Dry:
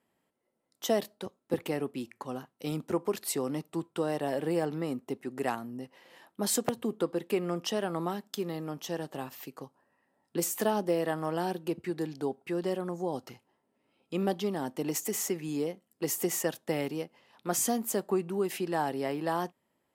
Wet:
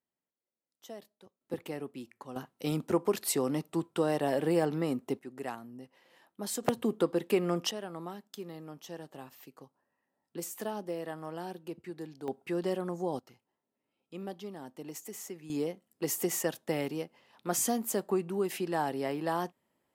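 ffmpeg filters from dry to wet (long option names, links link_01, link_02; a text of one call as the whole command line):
ffmpeg -i in.wav -af "asetnsamples=nb_out_samples=441:pad=0,asendcmd='1.41 volume volume -6.5dB;2.36 volume volume 2dB;5.19 volume volume -7dB;6.63 volume volume 2dB;7.71 volume volume -8.5dB;12.28 volume volume -0.5dB;13.19 volume volume -11dB;15.5 volume volume -1dB',volume=-18dB" out.wav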